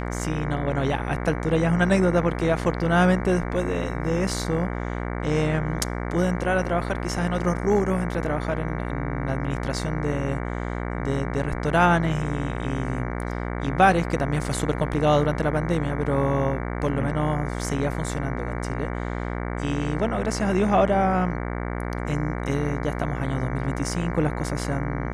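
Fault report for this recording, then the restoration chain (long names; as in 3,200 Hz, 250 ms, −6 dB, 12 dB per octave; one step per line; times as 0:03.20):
mains buzz 60 Hz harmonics 38 −29 dBFS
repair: hum removal 60 Hz, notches 38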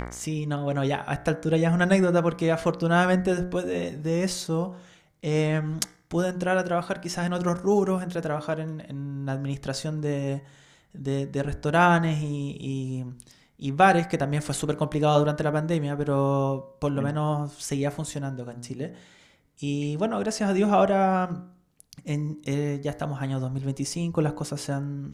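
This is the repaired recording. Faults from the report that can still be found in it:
none of them is left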